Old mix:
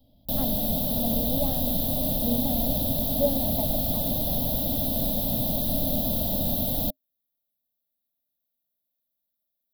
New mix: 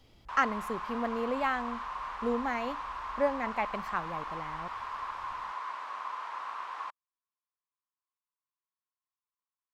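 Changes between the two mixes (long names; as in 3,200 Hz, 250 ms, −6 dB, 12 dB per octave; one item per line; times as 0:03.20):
background: add four-pole ladder band-pass 1,100 Hz, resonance 80%
master: remove drawn EQ curve 130 Hz 0 dB, 270 Hz +7 dB, 380 Hz −18 dB, 610 Hz +7 dB, 1,300 Hz −29 dB, 2,400 Hz −26 dB, 3,600 Hz 0 dB, 8,100 Hz −24 dB, 12,000 Hz +8 dB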